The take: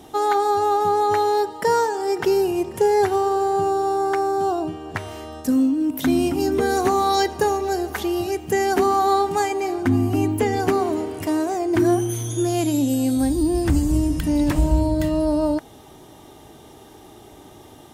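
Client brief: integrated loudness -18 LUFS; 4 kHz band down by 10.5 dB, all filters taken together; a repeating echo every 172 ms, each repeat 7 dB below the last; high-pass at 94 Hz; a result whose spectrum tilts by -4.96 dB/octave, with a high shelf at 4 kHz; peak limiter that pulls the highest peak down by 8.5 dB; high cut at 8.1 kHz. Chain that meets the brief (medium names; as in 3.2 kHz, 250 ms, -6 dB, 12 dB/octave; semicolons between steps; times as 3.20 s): high-pass 94 Hz; low-pass 8.1 kHz; treble shelf 4 kHz -7.5 dB; peaking EQ 4 kHz -8.5 dB; peak limiter -17 dBFS; feedback delay 172 ms, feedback 45%, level -7 dB; trim +6 dB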